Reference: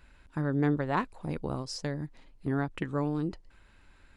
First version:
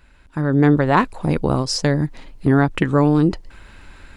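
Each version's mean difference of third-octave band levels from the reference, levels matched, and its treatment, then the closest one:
1.5 dB: in parallel at −1.5 dB: brickwall limiter −23.5 dBFS, peak gain reduction 7.5 dB
on the sum: automatic gain control gain up to 11.5 dB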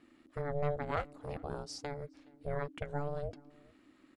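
5.0 dB: ring modulation 290 Hz
slap from a distant wall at 72 metres, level −25 dB
level −3.5 dB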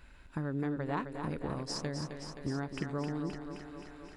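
8.0 dB: downward compressor 2.5 to 1, threshold −37 dBFS, peak gain reduction 10.5 dB
feedback echo with a high-pass in the loop 262 ms, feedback 74%, high-pass 160 Hz, level −7 dB
level +1.5 dB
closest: first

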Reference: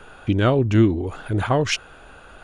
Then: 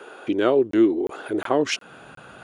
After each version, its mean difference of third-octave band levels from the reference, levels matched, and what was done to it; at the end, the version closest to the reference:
4.0 dB: in parallel at +1 dB: downward compressor, threshold −29 dBFS, peak gain reduction 17 dB
on the sum: high-pass filter sweep 370 Hz → 140 Hz, 0:01.49–0:02.06
regular buffer underruns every 0.36 s, samples 1,024, zero, from 0:00.71
level −5.5 dB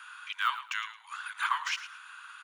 18.5 dB: de-essing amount 85%
Butterworth high-pass 1,000 Hz 72 dB per octave
on a send: repeating echo 109 ms, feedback 20%, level −13 dB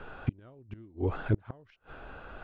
11.5 dB: gate with flip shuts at −14 dBFS, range −35 dB
high-frequency loss of the air 370 metres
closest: first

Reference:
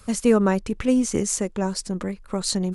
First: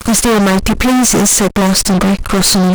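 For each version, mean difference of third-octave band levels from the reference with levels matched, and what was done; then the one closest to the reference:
11.0 dB: in parallel at +2.5 dB: downward compressor 6 to 1, threshold −27 dBFS, peak gain reduction 14 dB
on the sum: fuzz pedal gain 35 dB, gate −39 dBFS
level +4.5 dB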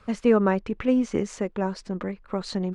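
3.5 dB: low-pass filter 2,700 Hz 12 dB per octave
low-shelf EQ 160 Hz −7.5 dB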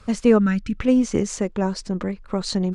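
2.5 dB: gain on a spectral selection 0:00.39–0:00.79, 320–1,300 Hz −18 dB
high-frequency loss of the air 110 metres
level +2.5 dB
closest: third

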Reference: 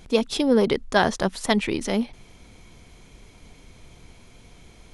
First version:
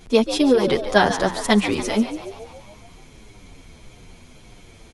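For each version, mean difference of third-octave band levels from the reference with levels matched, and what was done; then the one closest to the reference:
3.5 dB: mains-hum notches 60/120/180 Hz
echo with shifted repeats 142 ms, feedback 59%, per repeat +78 Hz, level −12 dB
barber-pole flanger 8.3 ms −1.7 Hz
level +6 dB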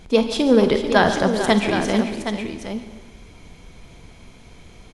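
5.0 dB: high-shelf EQ 6,200 Hz −6 dB
on a send: multi-tap delay 49/141/443/768 ms −13.5/−14/−11/−8.5 dB
on the sum: reverb whose tail is shaped and stops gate 450 ms falling, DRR 9 dB
level +3 dB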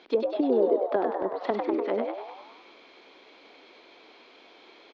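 10.0 dB: elliptic band-pass filter 310–4,200 Hz, stop band 40 dB
treble cut that deepens with the level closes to 410 Hz, closed at −22 dBFS
on a send: echo with shifted repeats 99 ms, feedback 57%, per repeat +89 Hz, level −4.5 dB
on the sum: level +1 dB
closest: first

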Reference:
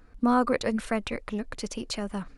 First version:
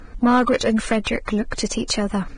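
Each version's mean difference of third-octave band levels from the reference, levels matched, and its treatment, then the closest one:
3.0 dB: high-shelf EQ 6,100 Hz −3.5 dB
in parallel at 0 dB: downward compressor 6 to 1, threshold −37 dBFS, peak gain reduction 17.5 dB
on the sum: soft clipping −19 dBFS, distortion −13 dB
level +8.5 dB
Ogg Vorbis 16 kbit/s 22,050 Hz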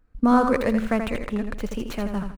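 5.0 dB: running median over 9 samples
noise gate −46 dBFS, range −16 dB
low-shelf EQ 110 Hz +6.5 dB
repeating echo 82 ms, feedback 30%, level −7 dB
level +3.5 dB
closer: first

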